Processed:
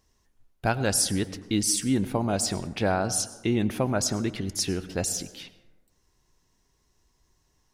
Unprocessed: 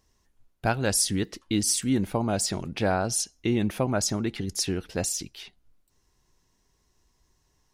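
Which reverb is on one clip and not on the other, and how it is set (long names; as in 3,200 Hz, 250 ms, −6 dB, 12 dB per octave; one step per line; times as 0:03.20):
dense smooth reverb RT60 1.2 s, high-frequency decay 0.4×, pre-delay 85 ms, DRR 15 dB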